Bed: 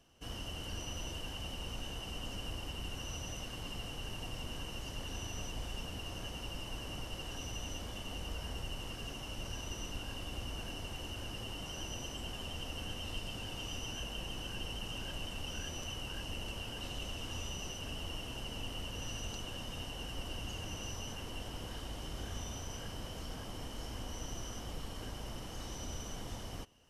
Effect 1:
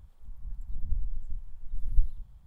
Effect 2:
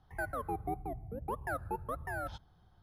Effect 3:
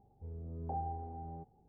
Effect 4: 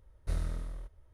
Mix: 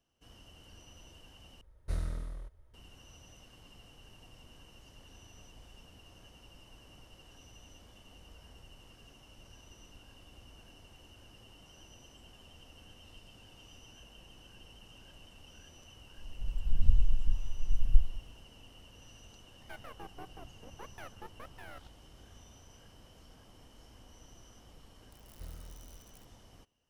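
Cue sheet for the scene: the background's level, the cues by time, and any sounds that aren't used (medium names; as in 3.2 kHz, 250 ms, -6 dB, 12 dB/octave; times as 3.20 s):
bed -13.5 dB
1.61 s: replace with 4 -1.5 dB
15.97 s: add 1 -6 dB + level rider gain up to 15 dB
19.51 s: add 2 -7 dB + half-wave rectifier
25.12 s: add 4 -14 dB + zero-crossing glitches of -29 dBFS
not used: 3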